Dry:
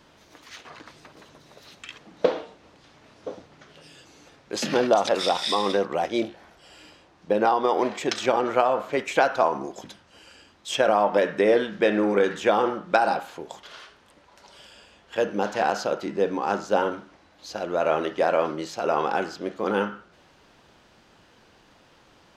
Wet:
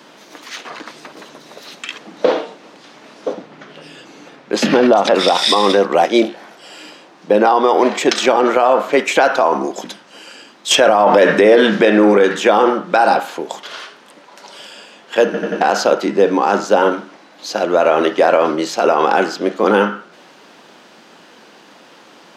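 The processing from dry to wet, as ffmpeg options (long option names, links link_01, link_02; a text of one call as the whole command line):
ffmpeg -i in.wav -filter_complex "[0:a]asettb=1/sr,asplit=3[link_01][link_02][link_03];[link_01]atrim=end=3.334[link_04];[link_02]atrim=start=3.33:end=5.28,asetpts=PTS-STARTPTS,afade=type=in:duration=0.004:curve=qsin,afade=type=out:start_time=1.946:duration=0.004:curve=qsin,bass=frequency=250:gain=5,treble=frequency=4000:gain=-8[link_05];[link_03]atrim=start=5.276[link_06];[link_04][link_05]acrossfade=duration=0.004:curve1=hsin:curve2=qsin[link_07];[link_07][link_06]acrossfade=duration=0.004:curve1=qsin:curve2=hsin,asplit=7[link_08][link_09][link_10][link_11][link_12][link_13][link_14];[link_08]atrim=end=10.712[link_15];[link_09]atrim=start=10.708:end=11.852,asetpts=PTS-STARTPTS,volume=8.5dB[link_16];[link_10]atrim=start=11.848:end=15.342[link_17];[link_11]atrim=start=15.248:end=15.342[link_18];[link_12]atrim=start=15.248:end=15.342[link_19];[link_13]atrim=start=15.248:end=15.342[link_20];[link_14]atrim=start=15.608[link_21];[link_15][link_16]acrossfade=duration=0.004:curve1=hsin:curve2=hsin[link_22];[link_22][link_17]acrossfade=duration=0.004:curve1=hsin:curve2=hsin[link_23];[link_23][link_18]acrossfade=duration=0.004:curve1=hsin:curve2=hsin[link_24];[link_24][link_19]acrossfade=duration=0.004:curve1=hsin:curve2=hsin[link_25];[link_25][link_20]acrossfade=duration=0.004:curve1=hsin:curve2=hsin[link_26];[link_26][link_21]acrossfade=duration=0.004:curve1=hsin:curve2=hsin,highpass=frequency=190:width=0.5412,highpass=frequency=190:width=1.3066,alimiter=level_in=14dB:limit=-1dB:release=50:level=0:latency=1,volume=-1dB" out.wav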